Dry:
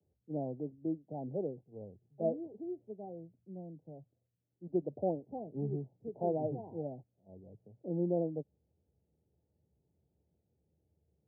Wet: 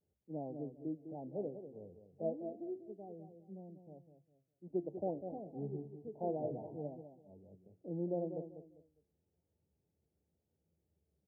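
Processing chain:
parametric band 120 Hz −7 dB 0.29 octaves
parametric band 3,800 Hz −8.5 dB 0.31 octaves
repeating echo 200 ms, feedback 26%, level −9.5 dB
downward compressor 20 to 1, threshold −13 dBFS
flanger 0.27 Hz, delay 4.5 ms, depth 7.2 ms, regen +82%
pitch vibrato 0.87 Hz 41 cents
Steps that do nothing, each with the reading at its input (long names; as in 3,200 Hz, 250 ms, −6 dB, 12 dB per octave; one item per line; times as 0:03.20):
parametric band 3,800 Hz: nothing at its input above 910 Hz
downward compressor, threshold −13 dBFS: peak of its input −21.0 dBFS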